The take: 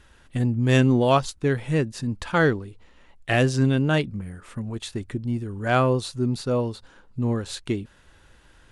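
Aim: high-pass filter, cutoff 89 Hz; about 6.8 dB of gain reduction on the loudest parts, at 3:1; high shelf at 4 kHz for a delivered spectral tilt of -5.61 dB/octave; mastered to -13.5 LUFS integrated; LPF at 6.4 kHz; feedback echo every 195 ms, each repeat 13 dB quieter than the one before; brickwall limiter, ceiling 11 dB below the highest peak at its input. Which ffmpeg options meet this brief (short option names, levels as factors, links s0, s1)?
-af "highpass=89,lowpass=6400,highshelf=f=4000:g=6,acompressor=threshold=0.0708:ratio=3,alimiter=limit=0.1:level=0:latency=1,aecho=1:1:195|390|585:0.224|0.0493|0.0108,volume=7.5"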